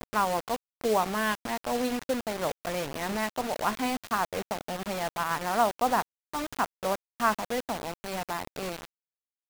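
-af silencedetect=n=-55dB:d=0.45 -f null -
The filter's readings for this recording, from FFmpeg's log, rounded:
silence_start: 8.85
silence_end: 9.50 | silence_duration: 0.65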